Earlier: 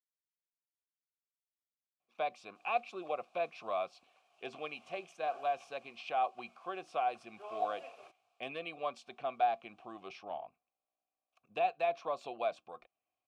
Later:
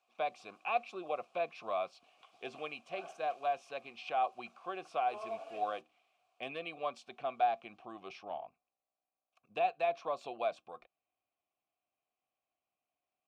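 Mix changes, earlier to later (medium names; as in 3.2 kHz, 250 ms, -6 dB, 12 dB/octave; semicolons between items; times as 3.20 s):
speech: entry -2.00 s; background: entry -2.30 s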